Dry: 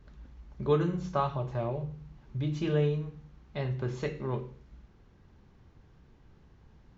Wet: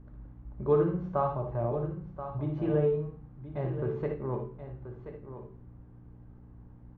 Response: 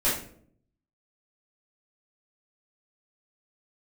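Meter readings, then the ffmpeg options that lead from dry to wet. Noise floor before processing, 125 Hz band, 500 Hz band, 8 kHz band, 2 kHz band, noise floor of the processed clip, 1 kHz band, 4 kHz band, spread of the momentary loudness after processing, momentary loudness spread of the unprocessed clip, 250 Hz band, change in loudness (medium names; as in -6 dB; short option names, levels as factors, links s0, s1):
-59 dBFS, -1.0 dB, +3.0 dB, no reading, -6.0 dB, -52 dBFS, +0.5 dB, under -15 dB, 20 LU, 14 LU, +0.5 dB, +1.0 dB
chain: -filter_complex "[0:a]lowpass=1100,equalizer=f=180:w=1.2:g=-4.5,asplit=2[s0][s1];[s1]aecho=0:1:1030:0.282[s2];[s0][s2]amix=inputs=2:normalize=0,aeval=exprs='val(0)+0.00282*(sin(2*PI*60*n/s)+sin(2*PI*2*60*n/s)/2+sin(2*PI*3*60*n/s)/3+sin(2*PI*4*60*n/s)/4+sin(2*PI*5*60*n/s)/5)':c=same,asplit=2[s3][s4];[s4]aecho=0:1:59|77:0.422|0.282[s5];[s3][s5]amix=inputs=2:normalize=0,volume=1.19"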